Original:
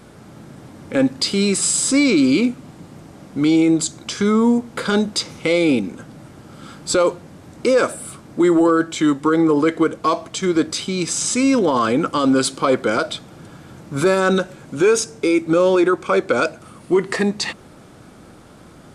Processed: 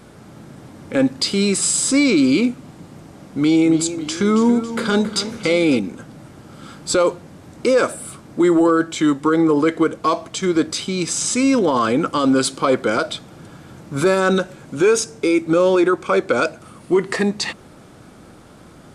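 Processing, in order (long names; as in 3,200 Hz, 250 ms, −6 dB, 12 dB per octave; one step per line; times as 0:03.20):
0:03.37–0:05.78: feedback echo with a swinging delay time 277 ms, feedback 52%, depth 81 cents, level −12 dB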